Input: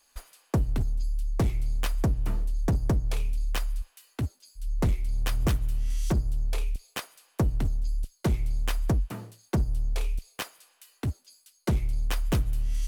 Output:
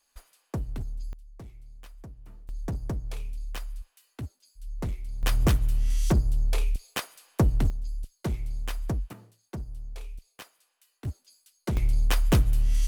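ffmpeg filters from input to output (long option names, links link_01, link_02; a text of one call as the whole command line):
ffmpeg -i in.wav -af "asetnsamples=nb_out_samples=441:pad=0,asendcmd='1.13 volume volume -20dB;2.49 volume volume -7dB;5.23 volume volume 3dB;7.7 volume volume -4.5dB;9.13 volume volume -11dB;11.05 volume volume -3.5dB;11.77 volume volume 4.5dB',volume=-7dB" out.wav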